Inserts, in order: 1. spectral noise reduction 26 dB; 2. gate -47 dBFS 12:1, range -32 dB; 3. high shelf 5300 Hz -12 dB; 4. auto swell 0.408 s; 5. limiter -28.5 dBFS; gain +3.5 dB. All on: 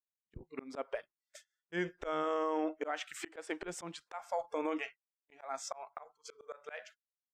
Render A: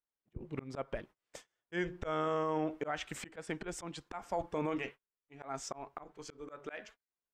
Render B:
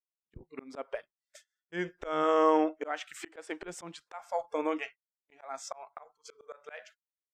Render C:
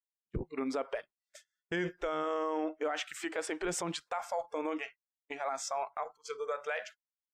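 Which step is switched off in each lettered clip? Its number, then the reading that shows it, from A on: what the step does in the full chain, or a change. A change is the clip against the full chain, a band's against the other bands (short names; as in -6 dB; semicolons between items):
1, 125 Hz band +9.0 dB; 5, crest factor change +6.0 dB; 4, crest factor change -3.0 dB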